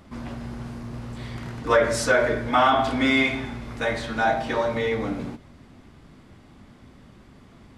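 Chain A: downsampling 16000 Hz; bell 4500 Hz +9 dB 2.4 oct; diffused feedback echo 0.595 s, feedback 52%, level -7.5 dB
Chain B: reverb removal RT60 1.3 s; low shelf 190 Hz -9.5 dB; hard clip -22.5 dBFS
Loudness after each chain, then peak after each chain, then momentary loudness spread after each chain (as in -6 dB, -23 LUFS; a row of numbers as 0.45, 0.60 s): -19.5, -28.0 LUFS; -3.0, -22.5 dBFS; 19, 18 LU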